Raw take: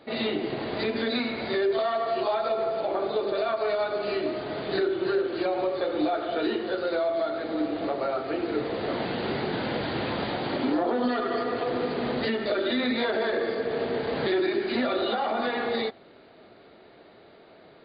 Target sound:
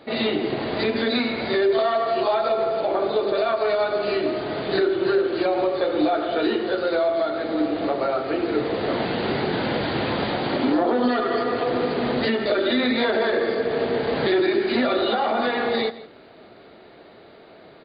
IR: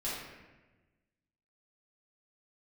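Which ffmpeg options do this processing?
-filter_complex "[0:a]asplit=2[s0][s1];[s1]adelay=163.3,volume=0.141,highshelf=f=4000:g=-3.67[s2];[s0][s2]amix=inputs=2:normalize=0,volume=1.78"

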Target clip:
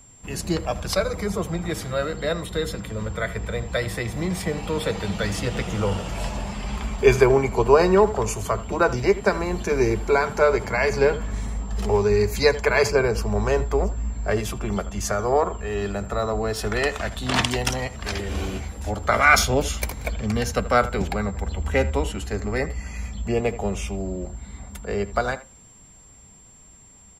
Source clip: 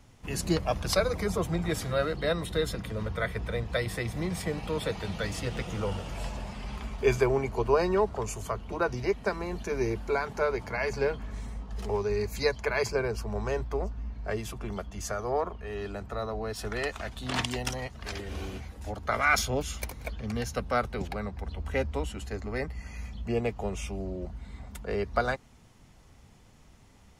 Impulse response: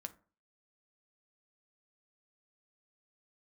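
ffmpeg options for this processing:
-filter_complex "[0:a]dynaudnorm=f=870:g=11:m=2.24,asplit=2[s0][s1];[s1]adelay=80,highpass=300,lowpass=3400,asoftclip=type=hard:threshold=0.224,volume=0.158[s2];[s0][s2]amix=inputs=2:normalize=0,aeval=exprs='val(0)+0.00282*sin(2*PI*7400*n/s)':c=same,asplit=2[s3][s4];[1:a]atrim=start_sample=2205[s5];[s4][s5]afir=irnorm=-1:irlink=0,volume=1.19[s6];[s3][s6]amix=inputs=2:normalize=0,volume=0.75"

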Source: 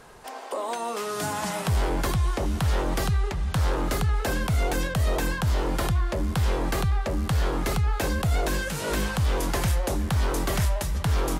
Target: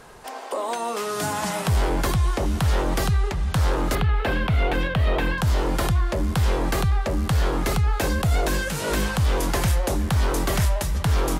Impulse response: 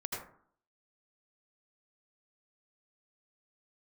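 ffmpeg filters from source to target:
-filter_complex "[0:a]asettb=1/sr,asplit=3[s0][s1][s2];[s0]atrim=end=3.954[s3];[s1]atrim=start=3.95:end=5.38,asetpts=PTS-STARTPTS,afade=t=in:d=0.004:c=qsin,afade=t=out:st=1.426:d=0.004:c=qsin,highshelf=f=4500:t=q:w=1.5:g=-13.5[s4];[s2]atrim=start=5.376[s5];[s3][s4]acrossfade=d=0.004:c1=hsin:c2=qsin[s6];[s6][s5]acrossfade=d=0.004:c1=qsin:c2=hsin,volume=1.41"

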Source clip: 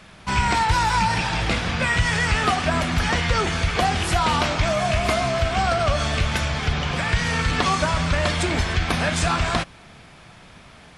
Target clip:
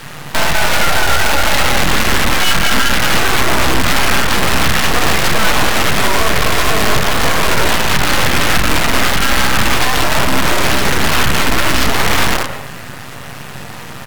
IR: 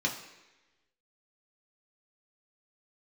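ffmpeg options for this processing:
-filter_complex "[0:a]highshelf=f=3100:g=-10,acrossover=split=130[s0][s1];[s0]aeval=exprs='sgn(val(0))*max(abs(val(0))-0.00422,0)':c=same[s2];[s2][s1]amix=inputs=2:normalize=0[s3];[1:a]atrim=start_sample=2205,afade=t=out:st=0.18:d=0.01,atrim=end_sample=8379[s4];[s3][s4]afir=irnorm=-1:irlink=0,acompressor=threshold=0.1:ratio=5,asplit=2[s5][s6];[s6]adelay=160,highpass=300,lowpass=3400,asoftclip=type=hard:threshold=0.119,volume=0.398[s7];[s5][s7]amix=inputs=2:normalize=0,acrusher=bits=5:dc=4:mix=0:aa=0.000001,asetrate=34398,aresample=44100,aeval=exprs='abs(val(0))':c=same,equalizer=f=420:t=o:w=2.6:g=-5,alimiter=level_in=7.94:limit=0.891:release=50:level=0:latency=1,volume=0.891"

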